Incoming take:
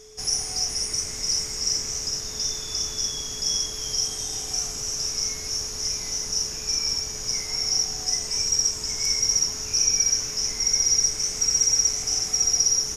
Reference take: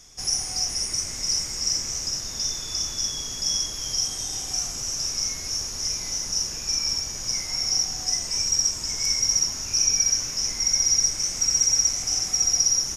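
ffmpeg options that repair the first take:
ffmpeg -i in.wav -af "bandreject=frequency=430:width=30" out.wav

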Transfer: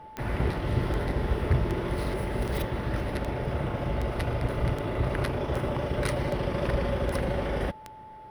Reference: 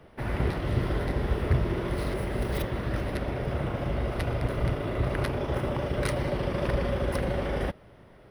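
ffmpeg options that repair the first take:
ffmpeg -i in.wav -af "adeclick=threshold=4,bandreject=frequency=870:width=30" out.wav

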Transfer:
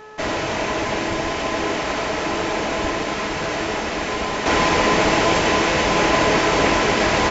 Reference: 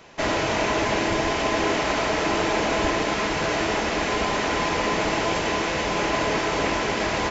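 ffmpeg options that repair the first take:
ffmpeg -i in.wav -af "bandreject=frequency=429.8:width_type=h:width=4,bandreject=frequency=859.6:width_type=h:width=4,bandreject=frequency=1289.4:width_type=h:width=4,bandreject=frequency=1719.2:width_type=h:width=4,asetnsamples=nb_out_samples=441:pad=0,asendcmd='4.46 volume volume -6.5dB',volume=0dB" out.wav

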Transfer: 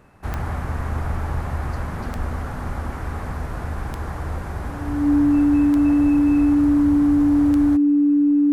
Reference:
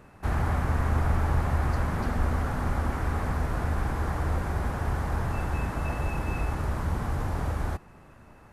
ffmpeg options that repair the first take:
ffmpeg -i in.wav -af "adeclick=threshold=4,bandreject=frequency=290:width=30" out.wav

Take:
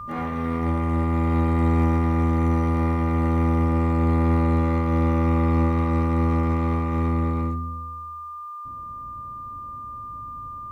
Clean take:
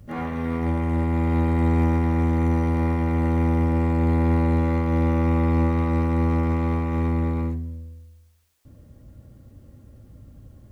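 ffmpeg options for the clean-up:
ffmpeg -i in.wav -af "bandreject=frequency=1200:width=30" out.wav

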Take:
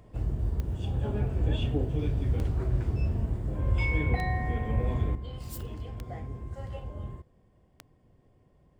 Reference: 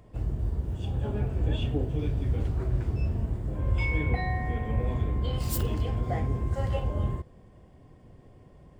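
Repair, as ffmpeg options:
ffmpeg -i in.wav -af "adeclick=threshold=4,asetnsamples=nb_out_samples=441:pad=0,asendcmd='5.15 volume volume 10dB',volume=0dB" out.wav

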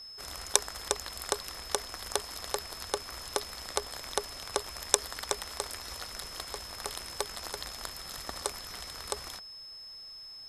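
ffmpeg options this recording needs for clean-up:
ffmpeg -i in.wav -af "bandreject=frequency=5200:width=30" out.wav

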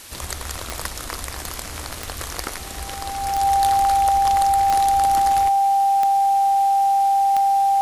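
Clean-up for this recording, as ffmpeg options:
ffmpeg -i in.wav -af "adeclick=threshold=4,bandreject=frequency=790:width=30,afwtdn=0.011" out.wav

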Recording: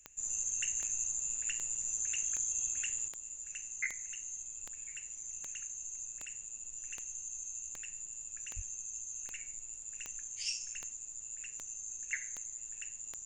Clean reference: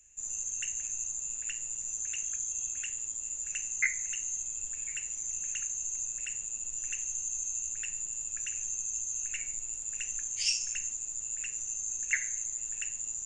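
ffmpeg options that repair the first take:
ffmpeg -i in.wav -filter_complex "[0:a]adeclick=threshold=4,asplit=3[link_01][link_02][link_03];[link_01]afade=type=out:start_time=8.55:duration=0.02[link_04];[link_02]highpass=frequency=140:width=0.5412,highpass=frequency=140:width=1.3066,afade=type=in:start_time=8.55:duration=0.02,afade=type=out:start_time=8.67:duration=0.02[link_05];[link_03]afade=type=in:start_time=8.67:duration=0.02[link_06];[link_04][link_05][link_06]amix=inputs=3:normalize=0,asetnsamples=nb_out_samples=441:pad=0,asendcmd='3.08 volume volume 8dB',volume=0dB" out.wav

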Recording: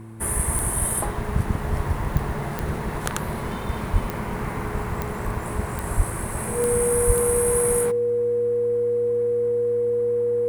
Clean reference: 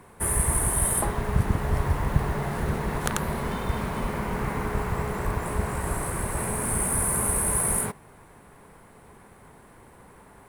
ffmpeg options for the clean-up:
ffmpeg -i in.wav -filter_complex "[0:a]adeclick=threshold=4,bandreject=frequency=111.3:width_type=h:width=4,bandreject=frequency=222.6:width_type=h:width=4,bandreject=frequency=333.9:width_type=h:width=4,bandreject=frequency=480:width=30,asplit=3[link_01][link_02][link_03];[link_01]afade=type=out:start_time=3.92:duration=0.02[link_04];[link_02]highpass=frequency=140:width=0.5412,highpass=frequency=140:width=1.3066,afade=type=in:start_time=3.92:duration=0.02,afade=type=out:start_time=4.04:duration=0.02[link_05];[link_03]afade=type=in:start_time=4.04:duration=0.02[link_06];[link_04][link_05][link_06]amix=inputs=3:normalize=0,asplit=3[link_07][link_08][link_09];[link_07]afade=type=out:start_time=5.96:duration=0.02[link_10];[link_08]highpass=frequency=140:width=0.5412,highpass=frequency=140:width=1.3066,afade=type=in:start_time=5.96:duration=0.02,afade=type=out:start_time=6.08:duration=0.02[link_11];[link_09]afade=type=in:start_time=6.08:duration=0.02[link_12];[link_10][link_11][link_12]amix=inputs=3:normalize=0,asplit=3[link_13][link_14][link_15];[link_13]afade=type=out:start_time=7.06:duration=0.02[link_16];[link_14]highpass=frequency=140:width=0.5412,highpass=frequency=140:width=1.3066,afade=type=in:start_time=7.06:duration=0.02,afade=type=out:start_time=7.18:duration=0.02[link_17];[link_15]afade=type=in:start_time=7.18:duration=0.02[link_18];[link_16][link_17][link_18]amix=inputs=3:normalize=0" out.wav

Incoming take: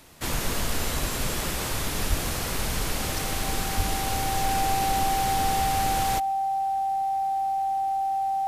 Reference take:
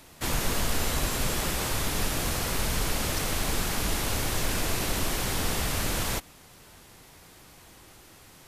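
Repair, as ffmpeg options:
ffmpeg -i in.wav -filter_complex "[0:a]bandreject=frequency=780:width=30,asplit=3[link_01][link_02][link_03];[link_01]afade=type=out:start_time=2.09:duration=0.02[link_04];[link_02]highpass=frequency=140:width=0.5412,highpass=frequency=140:width=1.3066,afade=type=in:start_time=2.09:duration=0.02,afade=type=out:start_time=2.21:duration=0.02[link_05];[link_03]afade=type=in:start_time=2.21:duration=0.02[link_06];[link_04][link_05][link_06]amix=inputs=3:normalize=0,asplit=3[link_07][link_08][link_09];[link_07]afade=type=out:start_time=3.76:duration=0.02[link_10];[link_08]highpass=frequency=140:width=0.5412,highpass=frequency=140:width=1.3066,afade=type=in:start_time=3.76:duration=0.02,afade=type=out:start_time=3.88:duration=0.02[link_11];[link_09]afade=type=in:start_time=3.88:duration=0.02[link_12];[link_10][link_11][link_12]amix=inputs=3:normalize=0" out.wav

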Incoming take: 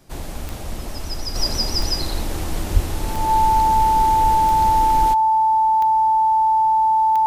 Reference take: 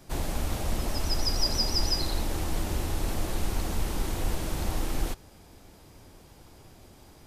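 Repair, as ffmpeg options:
ffmpeg -i in.wav -filter_complex "[0:a]adeclick=threshold=4,bandreject=frequency=880:width=30,asplit=3[link_01][link_02][link_03];[link_01]afade=type=out:start_time=2.73:duration=0.02[link_04];[link_02]highpass=frequency=140:width=0.5412,highpass=frequency=140:width=1.3066,afade=type=in:start_time=2.73:duration=0.02,afade=type=out:start_time=2.85:duration=0.02[link_05];[link_03]afade=type=in:start_time=2.85:duration=0.02[link_06];[link_04][link_05][link_06]amix=inputs=3:normalize=0,asetnsamples=nb_out_samples=441:pad=0,asendcmd='1.35 volume volume -5dB',volume=0dB" out.wav

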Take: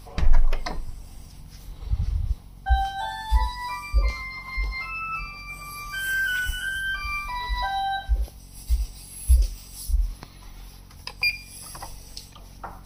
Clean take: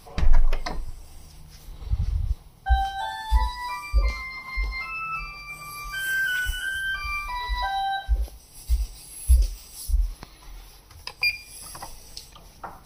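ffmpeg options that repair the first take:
ffmpeg -i in.wav -af "bandreject=frequency=45.8:width_type=h:width=4,bandreject=frequency=91.6:width_type=h:width=4,bandreject=frequency=137.4:width_type=h:width=4,bandreject=frequency=183.2:width_type=h:width=4,bandreject=frequency=229:width_type=h:width=4,bandreject=frequency=274.8:width_type=h:width=4" out.wav

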